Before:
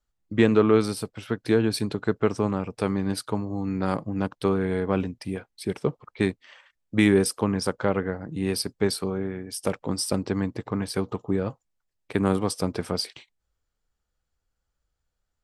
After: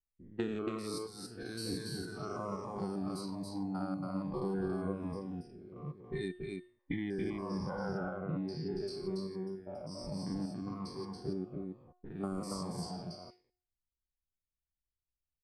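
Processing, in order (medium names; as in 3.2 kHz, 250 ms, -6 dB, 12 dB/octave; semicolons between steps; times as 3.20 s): spectrogram pixelated in time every 200 ms; level-controlled noise filter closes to 310 Hz, open at -23.5 dBFS; 6.28–8.77 s: low-pass 3.1 kHz 12 dB/octave; spectral noise reduction 15 dB; compression 16:1, threshold -32 dBFS, peak gain reduction 16 dB; feedback comb 360 Hz, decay 0.47 s, harmonics all, mix 70%; delay 280 ms -3.5 dB; Shepard-style phaser falling 1.2 Hz; trim +9.5 dB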